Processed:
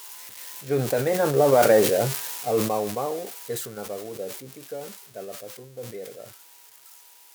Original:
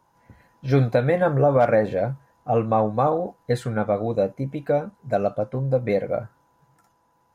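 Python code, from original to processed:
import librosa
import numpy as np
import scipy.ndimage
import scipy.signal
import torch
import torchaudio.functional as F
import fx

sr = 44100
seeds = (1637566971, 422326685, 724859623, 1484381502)

y = x + 0.5 * 10.0 ** (-17.5 / 20.0) * np.diff(np.sign(x), prepend=np.sign(x[:1]))
y = fx.doppler_pass(y, sr, speed_mps=8, closest_m=3.6, pass_at_s=1.79)
y = fx.highpass(y, sr, hz=240.0, slope=6)
y = fx.peak_eq(y, sr, hz=400.0, db=9.5, octaves=0.46)
y = fx.sustainer(y, sr, db_per_s=62.0)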